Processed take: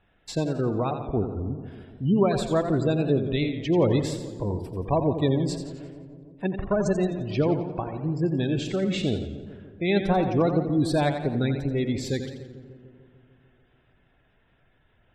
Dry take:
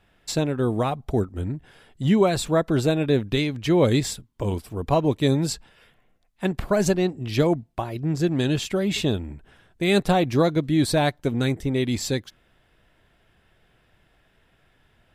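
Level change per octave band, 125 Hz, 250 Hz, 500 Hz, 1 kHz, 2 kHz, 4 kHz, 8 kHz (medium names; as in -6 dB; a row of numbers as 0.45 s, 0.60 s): -2.0 dB, -2.0 dB, -2.0 dB, -2.5 dB, -5.0 dB, -6.5 dB, -9.5 dB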